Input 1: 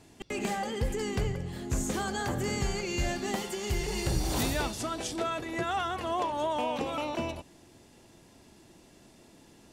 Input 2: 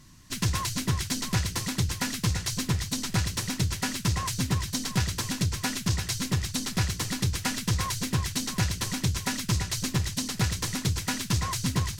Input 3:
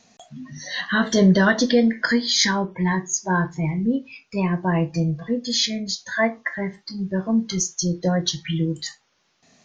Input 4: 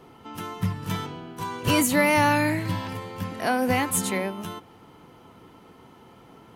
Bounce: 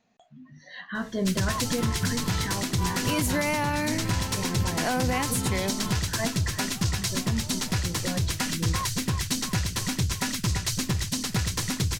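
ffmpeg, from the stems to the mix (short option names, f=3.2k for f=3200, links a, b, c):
-filter_complex "[0:a]adelay=1050,volume=-18.5dB[a];[1:a]acontrast=53,adelay=950,volume=-3.5dB[b];[2:a]equalizer=f=5.8k:t=o:w=1.1:g=-13,volume=-11dB[c];[3:a]adelay=1400,volume=-0.5dB[d];[a][b][c][d]amix=inputs=4:normalize=0,alimiter=limit=-16dB:level=0:latency=1:release=98"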